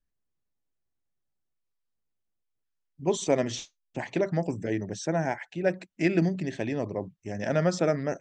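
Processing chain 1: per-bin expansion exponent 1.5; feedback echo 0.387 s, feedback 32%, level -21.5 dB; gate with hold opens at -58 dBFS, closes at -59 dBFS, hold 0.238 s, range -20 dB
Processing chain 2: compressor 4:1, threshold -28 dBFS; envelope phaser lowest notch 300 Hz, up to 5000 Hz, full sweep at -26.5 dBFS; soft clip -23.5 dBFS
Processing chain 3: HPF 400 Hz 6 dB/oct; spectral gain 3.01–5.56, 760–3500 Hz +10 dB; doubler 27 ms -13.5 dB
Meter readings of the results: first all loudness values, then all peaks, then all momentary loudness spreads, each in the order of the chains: -31.5, -36.0, -30.0 LUFS; -12.5, -24.0, -9.5 dBFS; 12, 6, 10 LU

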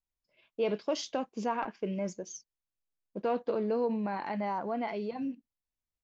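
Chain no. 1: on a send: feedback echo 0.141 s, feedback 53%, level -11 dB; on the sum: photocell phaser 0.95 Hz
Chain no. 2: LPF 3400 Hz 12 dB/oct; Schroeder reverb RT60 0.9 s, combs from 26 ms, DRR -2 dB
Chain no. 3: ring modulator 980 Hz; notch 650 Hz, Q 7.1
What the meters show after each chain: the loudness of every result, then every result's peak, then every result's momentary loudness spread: -36.0, -29.5, -36.0 LUFS; -20.5, -14.0, -20.5 dBFS; 12, 15, 13 LU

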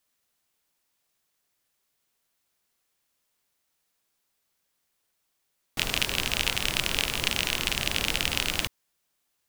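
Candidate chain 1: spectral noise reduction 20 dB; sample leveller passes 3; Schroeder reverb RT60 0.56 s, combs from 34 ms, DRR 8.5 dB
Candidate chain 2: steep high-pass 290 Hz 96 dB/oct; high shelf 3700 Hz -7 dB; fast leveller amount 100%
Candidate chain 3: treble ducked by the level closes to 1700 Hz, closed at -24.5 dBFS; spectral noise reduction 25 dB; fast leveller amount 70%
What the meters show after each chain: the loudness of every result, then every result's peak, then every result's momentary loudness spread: -18.0, -24.5, -28.0 LUFS; -2.0, -5.5, -5.0 dBFS; 5, 15, 3 LU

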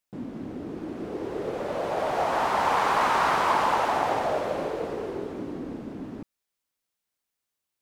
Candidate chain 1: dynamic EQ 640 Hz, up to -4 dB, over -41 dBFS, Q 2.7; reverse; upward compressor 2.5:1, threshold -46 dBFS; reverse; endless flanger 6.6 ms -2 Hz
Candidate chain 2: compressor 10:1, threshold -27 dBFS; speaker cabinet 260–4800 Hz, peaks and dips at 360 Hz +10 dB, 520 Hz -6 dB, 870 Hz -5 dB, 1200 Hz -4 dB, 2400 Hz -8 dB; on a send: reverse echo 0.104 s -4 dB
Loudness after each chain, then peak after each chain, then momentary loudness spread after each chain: -31.0, -32.0 LUFS; -15.0, -18.5 dBFS; 14, 6 LU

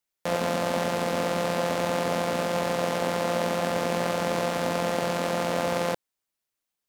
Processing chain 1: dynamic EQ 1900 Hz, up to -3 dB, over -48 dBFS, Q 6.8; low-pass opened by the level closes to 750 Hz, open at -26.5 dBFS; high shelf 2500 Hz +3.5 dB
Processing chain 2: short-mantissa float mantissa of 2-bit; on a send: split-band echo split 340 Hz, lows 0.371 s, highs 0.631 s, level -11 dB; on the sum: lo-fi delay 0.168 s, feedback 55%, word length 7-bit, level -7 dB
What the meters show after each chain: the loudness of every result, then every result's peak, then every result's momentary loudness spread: -26.5, -26.5 LUFS; -9.0, -11.5 dBFS; 1, 4 LU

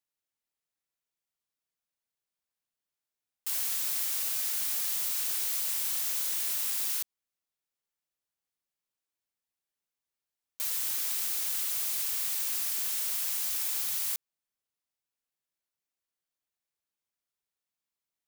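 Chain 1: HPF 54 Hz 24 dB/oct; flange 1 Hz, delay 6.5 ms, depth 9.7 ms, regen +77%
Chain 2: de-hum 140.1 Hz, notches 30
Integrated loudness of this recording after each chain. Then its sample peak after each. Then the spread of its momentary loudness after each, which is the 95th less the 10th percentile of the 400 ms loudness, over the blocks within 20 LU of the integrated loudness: -33.0, -28.5 LUFS; -22.5, -17.5 dBFS; 3, 3 LU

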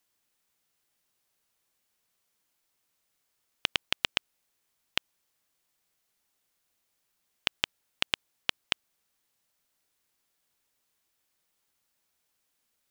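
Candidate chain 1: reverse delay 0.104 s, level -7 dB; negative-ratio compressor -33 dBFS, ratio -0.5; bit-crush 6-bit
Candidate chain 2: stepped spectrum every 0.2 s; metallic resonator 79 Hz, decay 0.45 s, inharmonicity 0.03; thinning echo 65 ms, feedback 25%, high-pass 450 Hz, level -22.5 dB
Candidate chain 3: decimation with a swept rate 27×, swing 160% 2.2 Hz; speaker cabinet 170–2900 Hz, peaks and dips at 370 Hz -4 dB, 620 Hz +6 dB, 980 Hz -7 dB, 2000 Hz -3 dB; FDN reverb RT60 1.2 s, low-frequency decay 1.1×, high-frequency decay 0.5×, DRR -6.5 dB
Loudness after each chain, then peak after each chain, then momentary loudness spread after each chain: -36.0, -55.0, -34.5 LUFS; -6.5, -34.0, -10.0 dBFS; 11, 10, 18 LU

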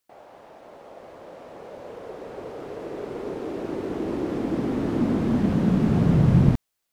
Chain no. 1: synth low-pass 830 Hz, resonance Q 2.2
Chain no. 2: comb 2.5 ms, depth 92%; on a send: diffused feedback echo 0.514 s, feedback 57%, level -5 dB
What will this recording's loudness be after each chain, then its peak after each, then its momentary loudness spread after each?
-23.5, -23.0 LUFS; -4.5, -5.0 dBFS; 21, 21 LU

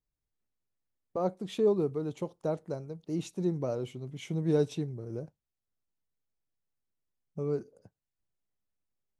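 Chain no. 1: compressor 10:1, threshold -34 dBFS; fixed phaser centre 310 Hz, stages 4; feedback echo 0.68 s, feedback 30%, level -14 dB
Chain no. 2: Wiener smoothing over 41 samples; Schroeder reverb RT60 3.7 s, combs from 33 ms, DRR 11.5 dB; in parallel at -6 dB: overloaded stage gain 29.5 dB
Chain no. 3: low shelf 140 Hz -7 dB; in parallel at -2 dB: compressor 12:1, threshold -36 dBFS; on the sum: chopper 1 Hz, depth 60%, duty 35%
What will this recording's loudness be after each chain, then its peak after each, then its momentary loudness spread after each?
-43.5, -31.0, -37.0 LUFS; -28.0, -15.5, -16.5 dBFS; 18, 19, 10 LU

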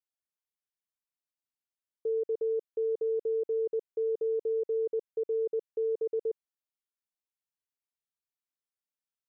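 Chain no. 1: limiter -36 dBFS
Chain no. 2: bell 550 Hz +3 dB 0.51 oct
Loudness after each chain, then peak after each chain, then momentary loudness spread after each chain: -42.0, -31.0 LUFS; -36.0, -24.5 dBFS; 4, 4 LU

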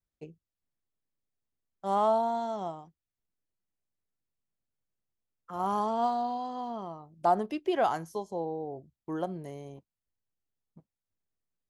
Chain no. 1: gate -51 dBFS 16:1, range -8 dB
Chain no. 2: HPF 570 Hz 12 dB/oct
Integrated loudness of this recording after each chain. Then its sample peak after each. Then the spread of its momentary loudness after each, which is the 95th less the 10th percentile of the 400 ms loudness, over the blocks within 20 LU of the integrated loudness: -31.5, -33.0 LUFS; -14.5, -15.5 dBFS; 17, 17 LU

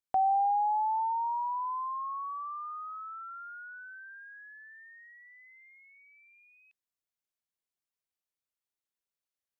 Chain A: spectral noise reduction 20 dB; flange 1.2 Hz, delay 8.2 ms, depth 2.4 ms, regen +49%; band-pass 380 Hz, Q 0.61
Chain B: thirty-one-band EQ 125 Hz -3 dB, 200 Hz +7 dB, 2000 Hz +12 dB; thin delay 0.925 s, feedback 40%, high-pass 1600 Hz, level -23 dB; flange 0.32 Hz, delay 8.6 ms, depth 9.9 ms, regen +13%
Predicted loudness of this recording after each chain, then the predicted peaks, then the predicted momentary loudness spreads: -42.5, -36.5 LUFS; -30.5, -22.0 dBFS; 22, 17 LU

